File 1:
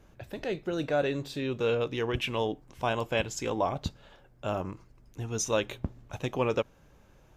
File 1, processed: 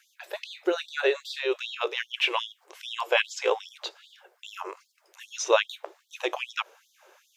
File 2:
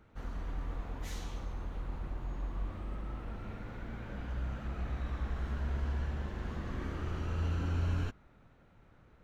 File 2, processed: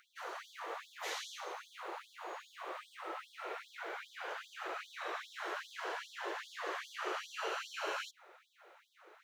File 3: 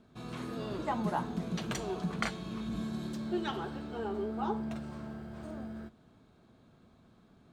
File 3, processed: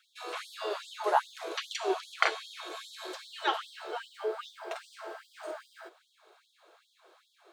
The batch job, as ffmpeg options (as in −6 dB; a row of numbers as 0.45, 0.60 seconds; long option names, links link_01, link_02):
-filter_complex "[0:a]acrossover=split=5000[link_01][link_02];[link_02]acompressor=threshold=-60dB:ratio=4:attack=1:release=60[link_03];[link_01][link_03]amix=inputs=2:normalize=0,afftfilt=real='re*gte(b*sr/1024,320*pow(3300/320,0.5+0.5*sin(2*PI*2.5*pts/sr)))':imag='im*gte(b*sr/1024,320*pow(3300/320,0.5+0.5*sin(2*PI*2.5*pts/sr)))':win_size=1024:overlap=0.75,volume=9dB"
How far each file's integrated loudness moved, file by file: +3.0, −4.0, +2.0 LU